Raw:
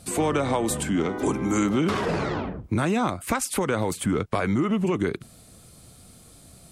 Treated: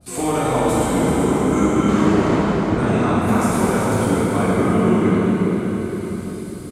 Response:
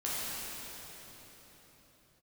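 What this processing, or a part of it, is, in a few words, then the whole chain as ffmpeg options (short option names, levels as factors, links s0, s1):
cave: -filter_complex "[0:a]aecho=1:1:386:0.376[s0];[1:a]atrim=start_sample=2205[s1];[s0][s1]afir=irnorm=-1:irlink=0,adynamicequalizer=threshold=0.02:dfrequency=1800:dqfactor=0.7:tfrequency=1800:tqfactor=0.7:attack=5:release=100:ratio=0.375:range=2.5:mode=cutabove:tftype=highshelf"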